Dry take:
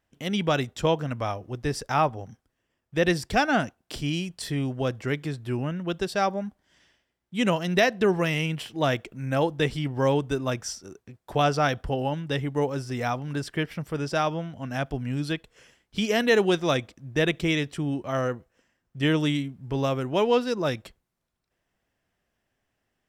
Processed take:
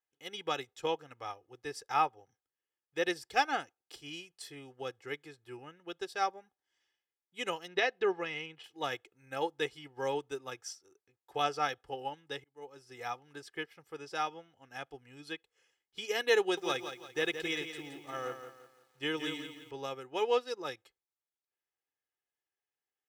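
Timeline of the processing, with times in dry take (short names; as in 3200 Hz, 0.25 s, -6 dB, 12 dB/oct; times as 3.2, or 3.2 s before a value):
7.68–8.64 LPF 4000 Hz
12.44–12.94 fade in
16.4–19.71 lo-fi delay 0.171 s, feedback 55%, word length 8-bit, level -6 dB
whole clip: HPF 620 Hz 6 dB/oct; comb 2.4 ms, depth 68%; upward expander 1.5:1, over -44 dBFS; gain -5 dB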